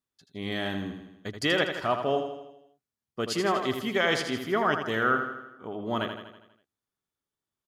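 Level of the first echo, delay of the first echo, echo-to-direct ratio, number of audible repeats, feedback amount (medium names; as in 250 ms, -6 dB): -7.5 dB, 81 ms, -6.0 dB, 6, 55%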